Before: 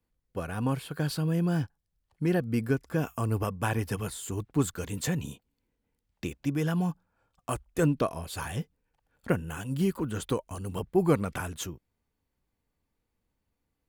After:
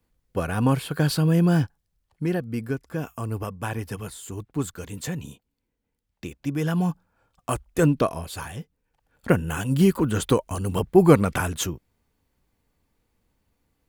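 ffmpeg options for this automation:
-af "volume=21.1,afade=t=out:st=1.52:d=0.93:silence=0.354813,afade=t=in:st=6.3:d=0.6:silence=0.473151,afade=t=out:st=8.11:d=0.48:silence=0.375837,afade=t=in:st=8.59:d=0.96:silence=0.251189"

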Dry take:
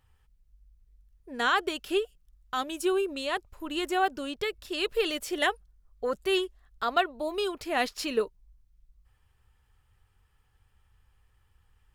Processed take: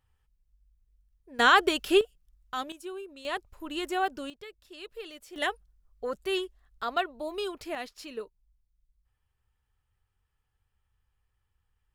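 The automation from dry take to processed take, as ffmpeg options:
-af "asetnsamples=n=441:p=0,asendcmd='1.39 volume volume 5.5dB;2.01 volume volume -3dB;2.72 volume volume -13dB;3.25 volume volume -2.5dB;4.3 volume volume -14.5dB;5.36 volume volume -3.5dB;7.75 volume volume -11dB',volume=0.447"

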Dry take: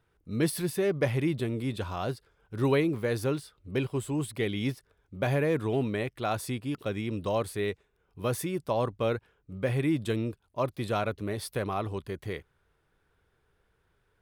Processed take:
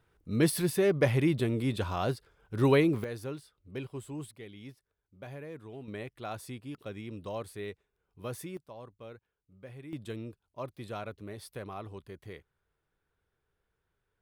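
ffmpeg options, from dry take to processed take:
-af "asetnsamples=n=441:p=0,asendcmd='3.04 volume volume -9.5dB;4.31 volume volume -17dB;5.88 volume volume -9dB;8.57 volume volume -19dB;9.93 volume volume -10dB',volume=1.19"

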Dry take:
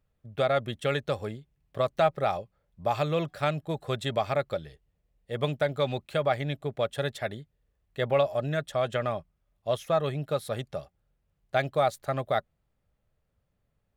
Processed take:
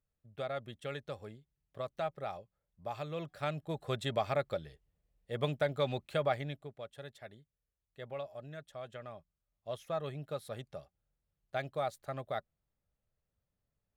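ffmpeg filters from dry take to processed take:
-af "volume=1.26,afade=t=in:st=3.1:d=0.83:silence=0.398107,afade=t=out:st=6.25:d=0.49:silence=0.237137,afade=t=in:st=9.09:d=0.94:silence=0.446684"

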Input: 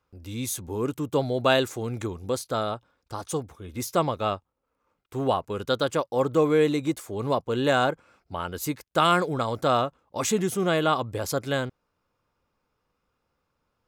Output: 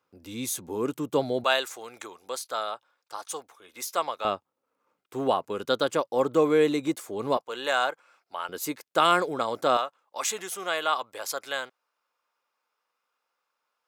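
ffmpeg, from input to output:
-af "asetnsamples=n=441:p=0,asendcmd='1.44 highpass f 750;4.25 highpass f 220;7.37 highpass f 730;8.49 highpass f 300;9.77 highpass f 800',highpass=200"

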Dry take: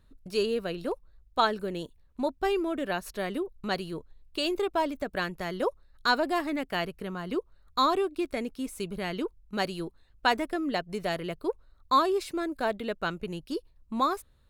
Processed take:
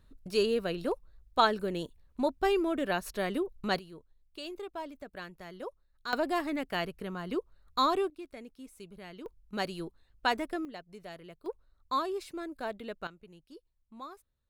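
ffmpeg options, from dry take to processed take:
-af "asetnsamples=n=441:p=0,asendcmd='3.79 volume volume -12.5dB;6.13 volume volume -2.5dB;8.1 volume volume -14dB;9.26 volume volume -4dB;10.65 volume volume -15dB;11.46 volume volume -8dB;13.07 volume volume -18.5dB',volume=1"

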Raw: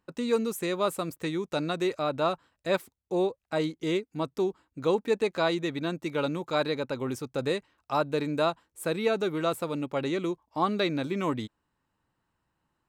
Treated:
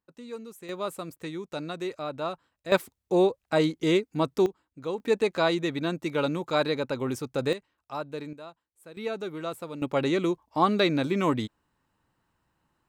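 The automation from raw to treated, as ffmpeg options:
-af "asetnsamples=n=441:p=0,asendcmd='0.69 volume volume -5dB;2.72 volume volume 5dB;4.46 volume volume -6.5dB;5 volume volume 2dB;7.53 volume volume -7.5dB;8.33 volume volume -18dB;8.97 volume volume -6dB;9.82 volume volume 4dB',volume=0.224"

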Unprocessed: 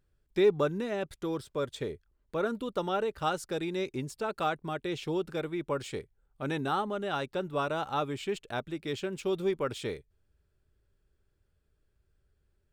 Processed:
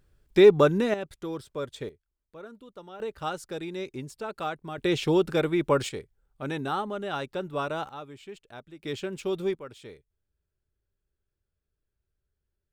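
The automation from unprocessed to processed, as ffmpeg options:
-af "asetnsamples=n=441:p=0,asendcmd='0.94 volume volume -1dB;1.89 volume volume -13.5dB;3 volume volume -2dB;4.78 volume volume 9dB;5.89 volume volume 0.5dB;7.89 volume volume -10dB;8.83 volume volume 1dB;9.55 volume volume -10dB',volume=2.66"

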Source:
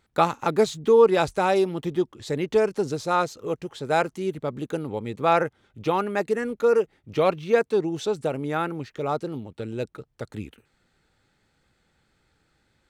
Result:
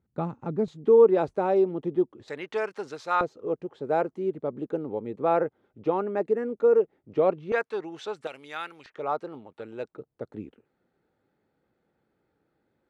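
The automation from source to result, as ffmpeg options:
-af "asetnsamples=n=441:p=0,asendcmd='0.68 bandpass f 380;2.28 bandpass f 1500;3.21 bandpass f 420;7.52 bandpass f 1400;8.27 bandpass f 3400;8.86 bandpass f 970;9.93 bandpass f 400',bandpass=f=150:t=q:w=0.87:csg=0"

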